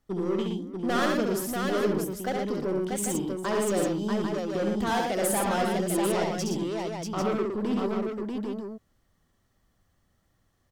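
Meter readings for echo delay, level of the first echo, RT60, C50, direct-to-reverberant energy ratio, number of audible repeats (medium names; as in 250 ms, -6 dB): 68 ms, -3.5 dB, no reverb, no reverb, no reverb, 5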